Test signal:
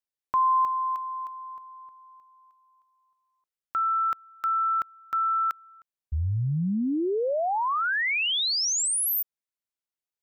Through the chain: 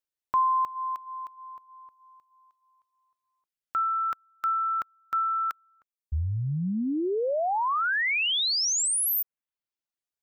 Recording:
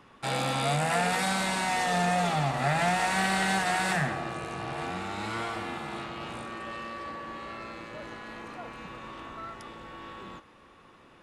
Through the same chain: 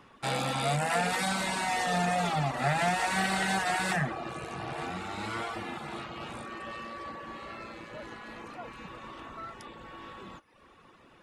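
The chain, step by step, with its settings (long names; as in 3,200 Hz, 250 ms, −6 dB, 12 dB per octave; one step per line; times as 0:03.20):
reverb reduction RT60 0.7 s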